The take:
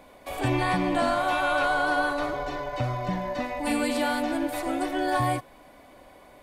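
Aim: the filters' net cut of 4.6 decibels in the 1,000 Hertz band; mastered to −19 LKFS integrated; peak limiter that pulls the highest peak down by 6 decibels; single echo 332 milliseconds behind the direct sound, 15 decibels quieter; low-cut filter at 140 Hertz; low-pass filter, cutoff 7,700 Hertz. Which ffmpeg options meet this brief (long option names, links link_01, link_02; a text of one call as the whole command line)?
ffmpeg -i in.wav -af "highpass=140,lowpass=7700,equalizer=frequency=1000:width_type=o:gain=-7,alimiter=limit=-21.5dB:level=0:latency=1,aecho=1:1:332:0.178,volume=12dB" out.wav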